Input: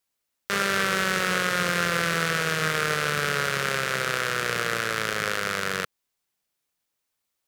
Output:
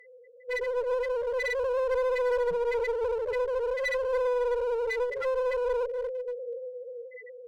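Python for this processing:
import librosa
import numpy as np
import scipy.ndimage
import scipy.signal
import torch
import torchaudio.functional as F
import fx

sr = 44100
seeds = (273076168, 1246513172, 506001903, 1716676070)

p1 = fx.bin_compress(x, sr, power=0.4)
p2 = fx.echo_feedback(p1, sr, ms=662, feedback_pct=27, wet_db=-21)
p3 = 10.0 ** (-8.5 / 20.0) * np.tanh(p2 / 10.0 ** (-8.5 / 20.0))
p4 = p2 + F.gain(torch.from_numpy(p3), -6.0).numpy()
p5 = fx.high_shelf(p4, sr, hz=9500.0, db=-11.5)
p6 = fx.small_body(p5, sr, hz=(500.0, 720.0, 2000.0), ring_ms=45, db=13)
p7 = p6 + fx.echo_alternate(p6, sr, ms=241, hz=1100.0, feedback_pct=74, wet_db=-4.5, dry=0)
p8 = fx.spec_topn(p7, sr, count=1)
p9 = fx.low_shelf(p8, sr, hz=390.0, db=-9.5)
p10 = fx.hum_notches(p9, sr, base_hz=50, count=8)
p11 = fx.clip_asym(p10, sr, top_db=-32.0, bottom_db=-21.5)
y = F.gain(torch.from_numpy(p11), 1.5).numpy()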